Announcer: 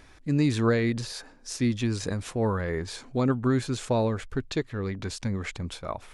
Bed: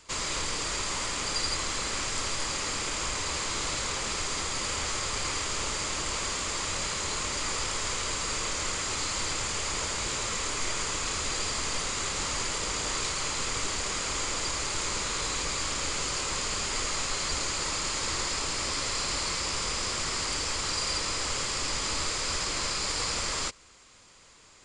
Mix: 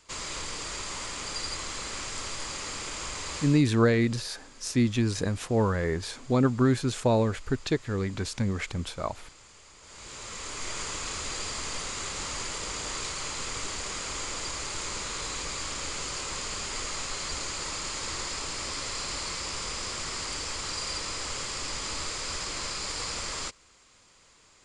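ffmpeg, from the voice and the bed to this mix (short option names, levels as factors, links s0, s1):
-filter_complex "[0:a]adelay=3150,volume=1.19[s0];[1:a]volume=5.01,afade=t=out:st=3.39:d=0.23:silence=0.133352,afade=t=in:st=9.81:d=0.99:silence=0.11885[s1];[s0][s1]amix=inputs=2:normalize=0"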